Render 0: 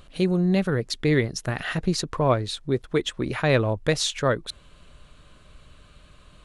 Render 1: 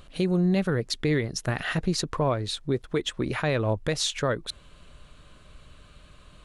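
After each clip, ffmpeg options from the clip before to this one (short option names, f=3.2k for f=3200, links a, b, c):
-af "alimiter=limit=-15.5dB:level=0:latency=1:release=149"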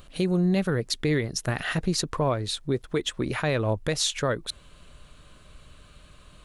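-af "highshelf=f=8.8k:g=7.5"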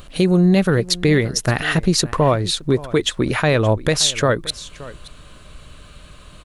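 -af "aecho=1:1:573:0.119,volume=9dB"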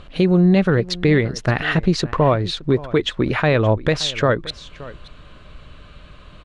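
-af "lowpass=3.5k"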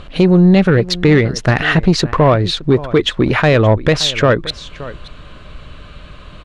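-af "acontrast=76"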